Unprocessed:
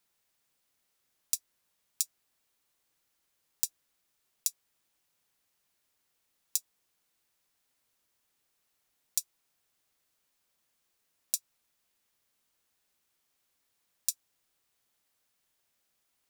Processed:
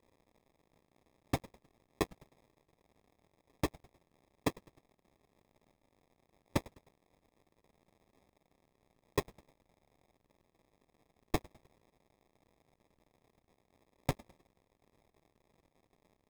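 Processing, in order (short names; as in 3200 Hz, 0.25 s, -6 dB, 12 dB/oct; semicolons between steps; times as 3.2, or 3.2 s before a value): CVSD 64 kbps; frequency-shifting echo 0.103 s, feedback 46%, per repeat +94 Hz, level -23.5 dB; sample-and-hold 30×; gain +8 dB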